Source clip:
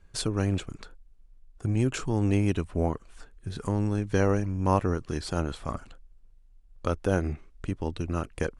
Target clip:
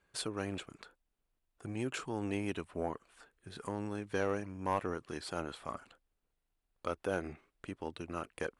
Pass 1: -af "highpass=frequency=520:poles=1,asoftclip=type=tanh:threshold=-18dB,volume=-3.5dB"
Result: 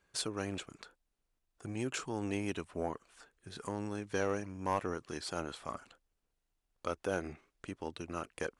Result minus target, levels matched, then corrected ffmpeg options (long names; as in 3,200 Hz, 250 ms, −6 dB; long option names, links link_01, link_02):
8,000 Hz band +4.0 dB
-af "highpass=frequency=520:poles=1,equalizer=frequency=6100:width_type=o:width=0.83:gain=-6.5,asoftclip=type=tanh:threshold=-18dB,volume=-3.5dB"